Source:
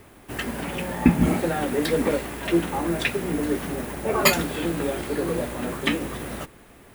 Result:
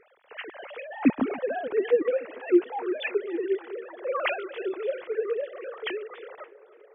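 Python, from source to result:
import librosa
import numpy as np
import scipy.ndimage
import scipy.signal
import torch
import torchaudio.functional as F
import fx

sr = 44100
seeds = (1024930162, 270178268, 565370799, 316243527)

p1 = fx.sine_speech(x, sr)
p2 = p1 + fx.echo_tape(p1, sr, ms=288, feedback_pct=82, wet_db=-18.5, lp_hz=1500.0, drive_db=9.0, wow_cents=24, dry=0)
y = p2 * librosa.db_to_amplitude(-4.0)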